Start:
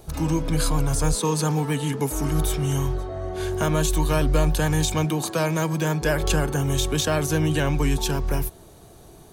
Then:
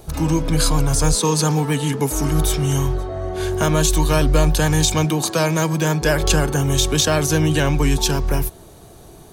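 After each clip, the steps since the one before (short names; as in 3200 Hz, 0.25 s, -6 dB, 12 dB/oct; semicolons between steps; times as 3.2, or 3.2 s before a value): dynamic EQ 5300 Hz, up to +5 dB, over -40 dBFS, Q 1.1; gain +4.5 dB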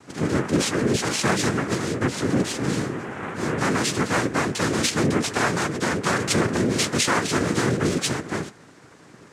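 flange 0.35 Hz, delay 9.8 ms, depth 8.2 ms, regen +36%; noise vocoder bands 3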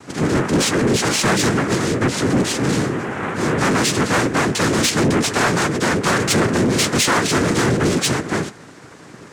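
soft clip -19 dBFS, distortion -13 dB; gain +8 dB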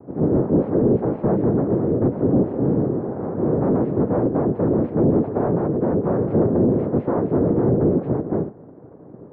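ladder low-pass 760 Hz, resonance 25%; gain +5 dB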